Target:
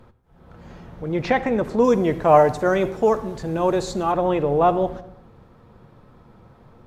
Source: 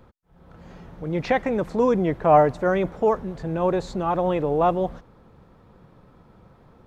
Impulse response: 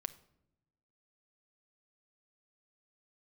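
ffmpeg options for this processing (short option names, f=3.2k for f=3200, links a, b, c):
-filter_complex "[0:a]asettb=1/sr,asplit=3[a][b][c];[a]atrim=end=1.844[d];[b]atrim=start=1.84:end=4.12,asetpts=PTS-STARTPTS,afade=t=in:d=0.004:c=qsin,afade=t=out:st=2.276:d=0.004:c=qsin,bass=f=250:g=-1,treble=f=4k:g=10[e];[c]atrim=start=4.116[f];[d][e]acrossfade=d=0.004:c1=hsin:c2=qsin[g];[g][f]acrossfade=d=0.004:c1=qsin:c2=hsin[h];[1:a]atrim=start_sample=2205,afade=t=out:st=0.32:d=0.01,atrim=end_sample=14553,asetrate=30870,aresample=44100[i];[h][i]afir=irnorm=-1:irlink=0,volume=2.5dB"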